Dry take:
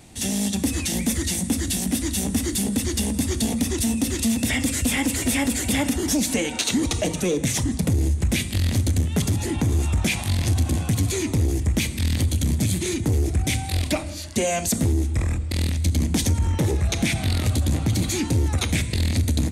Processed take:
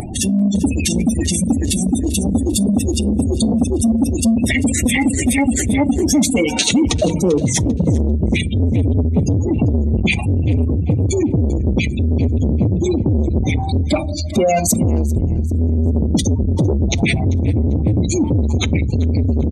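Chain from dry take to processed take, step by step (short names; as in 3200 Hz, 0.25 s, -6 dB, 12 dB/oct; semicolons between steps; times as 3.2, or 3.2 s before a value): spectral gate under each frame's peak -15 dB strong; in parallel at -1 dB: limiter -21 dBFS, peak gain reduction 8.5 dB; on the sum: upward compressor, threshold -22 dBFS; feedback echo 0.394 s, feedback 30%, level -16 dB; on a send at -21.5 dB: reverb RT60 0.30 s, pre-delay 5 ms; on the sum: core saturation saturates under 280 Hz; gain +5.5 dB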